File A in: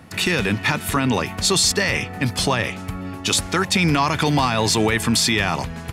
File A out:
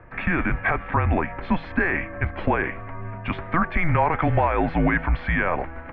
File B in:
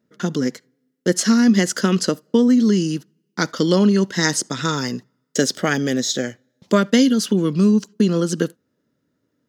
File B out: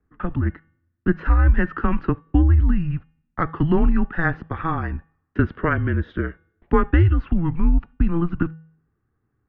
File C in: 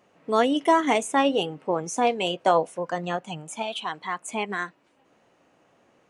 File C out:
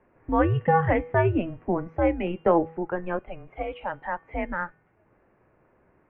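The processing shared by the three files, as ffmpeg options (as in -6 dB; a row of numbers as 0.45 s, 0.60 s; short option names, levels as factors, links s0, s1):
-af "bandreject=f=329.3:t=h:w=4,bandreject=f=658.6:t=h:w=4,bandreject=f=987.9:t=h:w=4,bandreject=f=1317.2:t=h:w=4,bandreject=f=1646.5:t=h:w=4,bandreject=f=1975.8:t=h:w=4,bandreject=f=2305.1:t=h:w=4,bandreject=f=2634.4:t=h:w=4,bandreject=f=2963.7:t=h:w=4,bandreject=f=3293:t=h:w=4,bandreject=f=3622.3:t=h:w=4,bandreject=f=3951.6:t=h:w=4,highpass=f=170:t=q:w=0.5412,highpass=f=170:t=q:w=1.307,lowpass=f=2300:t=q:w=0.5176,lowpass=f=2300:t=q:w=0.7071,lowpass=f=2300:t=q:w=1.932,afreqshift=-170"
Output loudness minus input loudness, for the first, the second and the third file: -4.5 LU, -3.5 LU, -1.0 LU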